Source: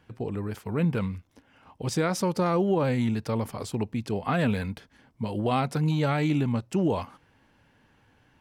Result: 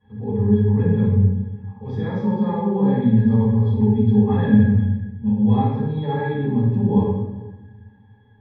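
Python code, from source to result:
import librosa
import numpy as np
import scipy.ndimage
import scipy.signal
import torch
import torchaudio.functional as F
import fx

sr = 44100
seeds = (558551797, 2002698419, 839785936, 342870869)

p1 = fx.graphic_eq_15(x, sr, hz=(400, 1000, 4000), db=(-10, -9, -7), at=(4.47, 5.37))
p2 = fx.rider(p1, sr, range_db=4, speed_s=2.0)
p3 = p1 + (p2 * 10.0 ** (2.0 / 20.0))
p4 = fx.air_absorb(p3, sr, metres=130.0)
p5 = fx.octave_resonator(p4, sr, note='G#', decay_s=0.11)
p6 = p5 + fx.echo_single(p5, sr, ms=392, db=-22.0, dry=0)
p7 = fx.room_shoebox(p6, sr, seeds[0], volume_m3=400.0, walls='mixed', distance_m=6.9)
y = p7 * 10.0 ** (-6.5 / 20.0)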